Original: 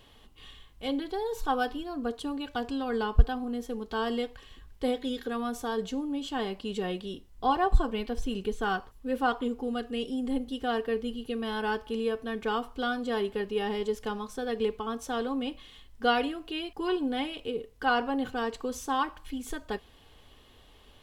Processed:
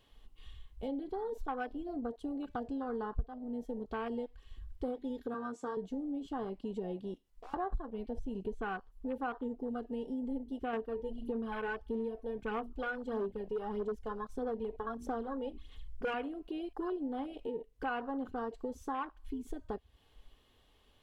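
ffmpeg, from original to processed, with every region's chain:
ffmpeg -i in.wav -filter_complex "[0:a]asettb=1/sr,asplit=3[link_01][link_02][link_03];[link_01]atrim=end=5.344[link_04];[link_02]atrim=start=5.34:end=5.77,asetpts=PTS-STARTPTS,afade=type=in:duration=0.004:curve=qsin,afade=type=out:start_time=0.426:duration=0.004:curve=qsin,highpass=270,equalizer=frequency=700:width_type=q:width=4:gain=-8,equalizer=frequency=3400:width_type=q:width=4:gain=-3,equalizer=frequency=7300:width_type=q:width=4:gain=7,lowpass=frequency=8700:width=0.5412,lowpass=frequency=8700:width=1.3066,asplit=2[link_05][link_06];[link_06]adelay=24,volume=-11dB[link_07];[link_05][link_07]amix=inputs=2:normalize=0,atrim=end_sample=18963[link_08];[link_03]atrim=start=5.766[link_09];[link_04][link_08]acrossfade=duration=0.004:curve1=hsin:curve2=qsin[link_10];[link_10][link_09]acrossfade=duration=0.004:curve1=qsin:curve2=hsin,asettb=1/sr,asplit=3[link_11][link_12][link_13];[link_11]atrim=end=7.144[link_14];[link_12]atrim=start=7.14:end=7.54,asetpts=PTS-STARTPTS,afade=type=in:duration=0.004:curve=qsin,afade=type=out:start_time=0.396:duration=0.004:curve=qsin,lowshelf=frequency=300:gain=-9,acompressor=threshold=-31dB:ratio=3:attack=3.2:release=140:knee=1:detection=peak,aeval=exprs='(tanh(178*val(0)+0.35)-tanh(0.35))/178':channel_layout=same[link_15];[link_13]atrim=start=7.536[link_16];[link_14][link_15]acrossfade=duration=0.004:curve1=hsin:curve2=qsin[link_17];[link_17][link_16]acrossfade=duration=0.004:curve1=qsin:curve2=hsin,asettb=1/sr,asplit=3[link_18][link_19][link_20];[link_18]atrim=end=10.734[link_21];[link_19]atrim=start=10.73:end=16.14,asetpts=PTS-STARTPTS,afade=type=in:duration=0.004:curve=qsin,afade=type=out:start_time=5.406:duration=0.004:curve=qsin,bandreject=frequency=60:width_type=h:width=6,bandreject=frequency=120:width_type=h:width=6,bandreject=frequency=180:width_type=h:width=6,bandreject=frequency=240:width_type=h:width=6,bandreject=frequency=300:width_type=h:width=6,aphaser=in_gain=1:out_gain=1:delay=2.1:decay=0.54:speed=1.6:type=sinusoidal,asoftclip=type=hard:threshold=-21.5dB[link_22];[link_20]atrim=start=16.136[link_23];[link_21][link_22]acrossfade=duration=0.004:curve1=hsin:curve2=qsin[link_24];[link_24][link_23]acrossfade=duration=0.004:curve1=qsin:curve2=hsin,afwtdn=0.02,acompressor=threshold=-45dB:ratio=3,volume=5.5dB" out.wav

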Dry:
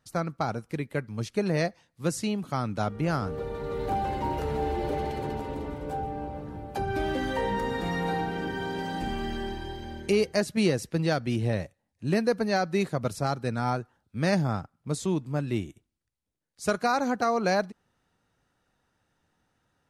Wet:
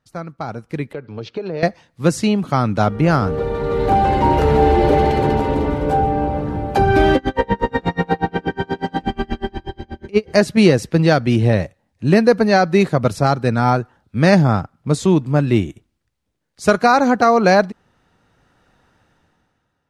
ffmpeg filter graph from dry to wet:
ffmpeg -i in.wav -filter_complex "[0:a]asettb=1/sr,asplit=3[link_01][link_02][link_03];[link_01]atrim=end=0.934[link_04];[link_02]atrim=start=0.93:end=1.63,asetpts=PTS-STARTPTS,afade=type=in:duration=0.004:curve=qsin,afade=type=out:start_time=0.696:duration=0.004:curve=qsin,highpass=150,equalizer=frequency=210:width_type=q:width=4:gain=-8,equalizer=frequency=450:width_type=q:width=4:gain=6,equalizer=frequency=1100:width_type=q:width=4:gain=-3,equalizer=frequency=1900:width_type=q:width=4:gain=-8,lowpass=frequency=4500:width=0.5412,lowpass=frequency=4500:width=1.3066,acompressor=threshold=-36dB:ratio=4:attack=3.2:release=140:knee=1:detection=peak[link_05];[link_03]atrim=start=1.626[link_06];[link_04][link_05]acrossfade=duration=0.004:curve1=hsin:curve2=qsin[link_07];[link_07][link_06]acrossfade=duration=0.004:curve1=qsin:curve2=hsin,asettb=1/sr,asplit=3[link_08][link_09][link_10];[link_08]atrim=end=7.164[link_11];[link_09]atrim=start=7.16:end=10.3,asetpts=PTS-STARTPTS,afade=type=in:duration=0.004:curve=qsin,afade=type=out:start_time=3.136:duration=0.004:curve=qsin,lowpass=frequency=4000:poles=1,aeval=exprs='val(0)*pow(10,-34*(0.5-0.5*cos(2*PI*8.3*n/s))/20)':channel_layout=same[link_12];[link_10]atrim=start=10.296[link_13];[link_11][link_12]acrossfade=duration=0.004:curve1=hsin:curve2=qsin[link_14];[link_14][link_13]acrossfade=duration=0.004:curve1=qsin:curve2=hsin,highshelf=frequency=6600:gain=-10.5,dynaudnorm=framelen=150:gausssize=11:maxgain=16.5dB" out.wav

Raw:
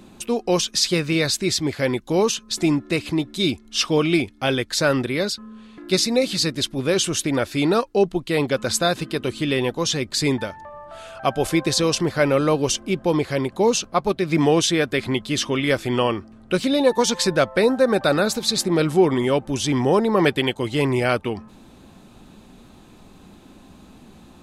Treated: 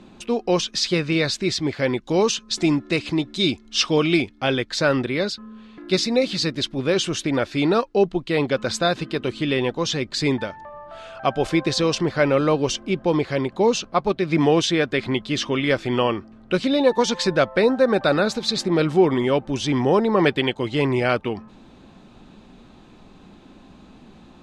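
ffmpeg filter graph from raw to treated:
ffmpeg -i in.wav -filter_complex "[0:a]asettb=1/sr,asplit=3[link_01][link_02][link_03];[link_01]atrim=end=2.034[link_04];[link_02]atrim=start=2.03:end=4.28,asetpts=PTS-STARTPTS,afade=type=in:duration=0.004:curve=qsin,afade=type=out:start_time=2.246:duration=0.004:curve=qsin,lowpass=9300,highshelf=frequency=5500:gain=9.5[link_05];[link_03]atrim=start=4.276[link_06];[link_04][link_05]acrossfade=duration=0.004:curve1=hsin:curve2=qsin[link_07];[link_07][link_06]acrossfade=duration=0.004:curve1=qsin:curve2=hsin,lowpass=5000,equalizer=frequency=82:width_type=o:width=0.77:gain=-4" out.wav

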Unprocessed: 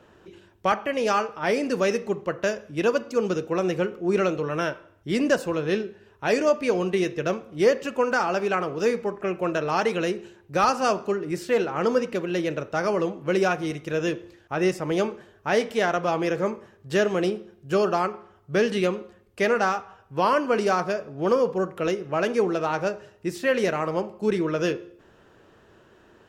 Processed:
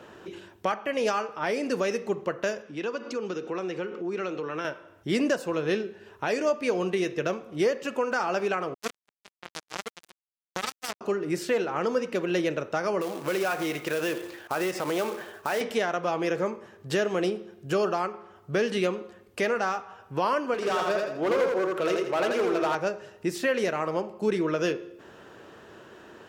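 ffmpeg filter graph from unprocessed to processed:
ffmpeg -i in.wav -filter_complex "[0:a]asettb=1/sr,asplit=3[link_01][link_02][link_03];[link_01]atrim=end=2.624[link_04];[link_02]atrim=start=2.62:end=4.65,asetpts=PTS-STARTPTS,afade=type=in:duration=0.004:curve=qsin,afade=type=out:start_time=2.026:duration=0.004:curve=qsin,equalizer=frequency=630:width_type=o:width=0.35:gain=-6.5,acompressor=threshold=-35dB:ratio=2.5:attack=3.2:release=140:knee=1:detection=peak,highpass=190,lowpass=5700[link_05];[link_03]atrim=start=4.646[link_06];[link_04][link_05]acrossfade=duration=0.004:curve1=hsin:curve2=qsin[link_07];[link_07][link_06]acrossfade=duration=0.004:curve1=qsin:curve2=hsin,asettb=1/sr,asplit=3[link_08][link_09][link_10];[link_08]atrim=end=8.744[link_11];[link_09]atrim=start=8.74:end=11.01,asetpts=PTS-STARTPTS,afade=type=in:duration=0.004:curve=qsin,afade=type=out:start_time=2.266:duration=0.004:curve=qsin,bass=frequency=250:gain=3,treble=frequency=4000:gain=6,flanger=delay=2.8:depth=6.3:regen=-27:speed=1.5:shape=sinusoidal,acrusher=bits=2:mix=0:aa=0.5[link_12];[link_10]atrim=start=11.006[link_13];[link_11][link_12]acrossfade=duration=0.004:curve1=hsin:curve2=qsin[link_14];[link_14][link_13]acrossfade=duration=0.004:curve1=qsin:curve2=hsin,asettb=1/sr,asplit=3[link_15][link_16][link_17];[link_15]atrim=end=13.014[link_18];[link_16]atrim=start=13.01:end=15.61,asetpts=PTS-STARTPTS,afade=type=in:duration=0.004:curve=qsin,afade=type=out:start_time=2.596:duration=0.004:curve=qsin,asplit=2[link_19][link_20];[link_20]highpass=frequency=720:poles=1,volume=13dB,asoftclip=type=tanh:threshold=-10dB[link_21];[link_19][link_21]amix=inputs=2:normalize=0,lowpass=frequency=2700:poles=1,volume=-6dB,acompressor=threshold=-29dB:ratio=2.5:attack=3.2:release=140:knee=1:detection=peak,acrusher=bits=3:mode=log:mix=0:aa=0.000001[link_22];[link_17]atrim=start=15.606[link_23];[link_18][link_22]acrossfade=duration=0.004:curve1=hsin:curve2=qsin[link_24];[link_24][link_23]acrossfade=duration=0.004:curve1=qsin:curve2=hsin,asettb=1/sr,asplit=3[link_25][link_26][link_27];[link_25]atrim=end=20.544[link_28];[link_26]atrim=start=20.54:end=22.75,asetpts=PTS-STARTPTS,afade=type=in:duration=0.004:curve=qsin,afade=type=out:start_time=2.206:duration=0.004:curve=qsin,bass=frequency=250:gain=-9,treble=frequency=4000:gain=-4,volume=23dB,asoftclip=hard,volume=-23dB,aecho=1:1:83|166|249|332:0.708|0.241|0.0818|0.0278,atrim=end_sample=97461[link_29];[link_27]atrim=start=22.746[link_30];[link_28][link_29]acrossfade=duration=0.004:curve1=hsin:curve2=qsin[link_31];[link_31][link_30]acrossfade=duration=0.004:curve1=qsin:curve2=hsin,acompressor=threshold=-41dB:ratio=1.5,highpass=frequency=190:poles=1,alimiter=limit=-23dB:level=0:latency=1:release=451,volume=7.5dB" out.wav

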